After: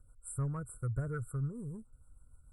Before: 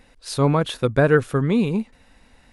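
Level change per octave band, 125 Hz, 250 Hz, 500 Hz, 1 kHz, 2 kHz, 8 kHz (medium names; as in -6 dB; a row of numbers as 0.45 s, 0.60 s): -13.0 dB, -21.5 dB, -27.5 dB, -23.5 dB, -25.5 dB, -9.5 dB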